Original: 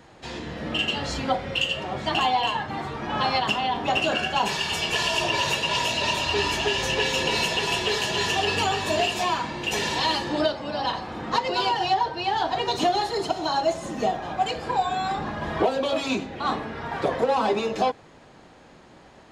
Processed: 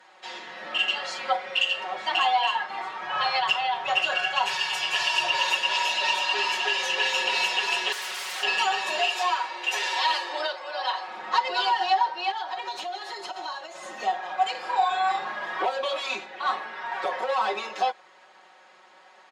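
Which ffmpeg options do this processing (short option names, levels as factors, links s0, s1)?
-filter_complex "[0:a]asettb=1/sr,asplit=3[s0][s1][s2];[s0]atrim=end=3.034[s3];[s1]atrim=start=3.03:end=5.4,asetpts=PTS-STARTPTS,afade=t=in:d=0.004:c=qsin,afade=t=out:st=2.366:d=0.004:c=qsin,lowshelf=f=160:t=q:w=3:g=11.5[s4];[s2]atrim=start=5.396[s5];[s3][s4]acrossfade=d=0.004:c1=hsin:c2=qsin[s6];[s6][s5]acrossfade=d=0.004:c1=qsin:c2=hsin,asettb=1/sr,asplit=3[s7][s8][s9];[s7]atrim=end=7.924[s10];[s8]atrim=start=7.92:end=8.43,asetpts=PTS-STARTPTS,afade=t=in:d=0.004:c=qsin,afade=t=out:st=0.506:d=0.004:c=qsin,aeval=exprs='0.0447*(abs(mod(val(0)/0.0447+3,4)-2)-1)':c=same[s11];[s9]atrim=start=8.426[s12];[s10][s11]acrossfade=d=0.004:c1=hsin:c2=qsin[s13];[s13][s12]acrossfade=d=0.004:c1=qsin:c2=hsin,asettb=1/sr,asplit=3[s14][s15][s16];[s14]atrim=end=8.994[s17];[s15]atrim=start=8.99:end=11.08,asetpts=PTS-STARTPTS,afade=t=in:d=0.004:c=qsin,afade=t=out:st=2.086:d=0.004:c=qsin,highpass=f=320:w=0.5412,highpass=f=320:w=1.3066[s18];[s16]atrim=start=11.076[s19];[s17][s18]acrossfade=d=0.004:c1=hsin:c2=qsin[s20];[s20][s19]acrossfade=d=0.004:c1=qsin:c2=hsin,asettb=1/sr,asplit=3[s21][s22][s23];[s21]atrim=end=12.314[s24];[s22]atrim=start=12.31:end=13.83,asetpts=PTS-STARTPTS,afade=t=in:d=0.004:c=qsin,afade=t=out:st=1.516:d=0.004:c=qsin,acompressor=threshold=0.0447:ratio=12:attack=3.2:release=140:knee=1:detection=peak[s25];[s23]atrim=start=13.826[s26];[s24][s25]acrossfade=d=0.004:c1=hsin:c2=qsin[s27];[s27][s26]acrossfade=d=0.004:c1=qsin:c2=hsin,asettb=1/sr,asplit=3[s28][s29][s30];[s28]atrim=end=14.514[s31];[s29]atrim=start=14.51:end=15.42,asetpts=PTS-STARTPTS,afade=t=in:d=0.004:c=qsin,afade=t=out:st=0.906:d=0.004:c=qsin,asplit=2[s32][s33];[s33]adelay=37,volume=0.631[s34];[s32][s34]amix=inputs=2:normalize=0,atrim=end_sample=40131[s35];[s30]atrim=start=15.416[s36];[s31][s35]acrossfade=d=0.004:c1=hsin:c2=qsin[s37];[s37][s36]acrossfade=d=0.004:c1=qsin:c2=hsin,highpass=860,aemphasis=mode=reproduction:type=cd,aecho=1:1:5.4:0.8"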